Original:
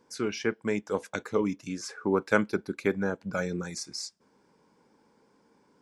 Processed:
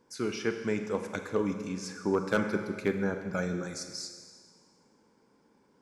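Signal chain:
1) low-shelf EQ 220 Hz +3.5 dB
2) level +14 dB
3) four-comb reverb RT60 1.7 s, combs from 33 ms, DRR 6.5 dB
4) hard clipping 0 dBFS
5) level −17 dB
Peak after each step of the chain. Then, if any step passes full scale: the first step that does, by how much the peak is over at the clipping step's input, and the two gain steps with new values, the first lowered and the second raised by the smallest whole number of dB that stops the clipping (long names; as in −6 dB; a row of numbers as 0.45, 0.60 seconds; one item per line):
−5.5, +8.5, +8.0, 0.0, −17.0 dBFS
step 2, 8.0 dB
step 2 +6 dB, step 5 −9 dB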